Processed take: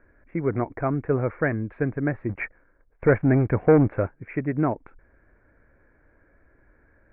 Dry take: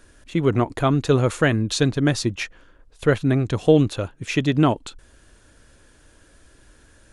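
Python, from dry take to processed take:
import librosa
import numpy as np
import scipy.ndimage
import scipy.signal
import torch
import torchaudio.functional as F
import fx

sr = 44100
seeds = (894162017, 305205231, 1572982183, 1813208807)

y = fx.leveller(x, sr, passes=2, at=(2.29, 4.1))
y = scipy.signal.sosfilt(scipy.signal.cheby1(6, 3, 2300.0, 'lowpass', fs=sr, output='sos'), y)
y = y * 10.0 ** (-4.0 / 20.0)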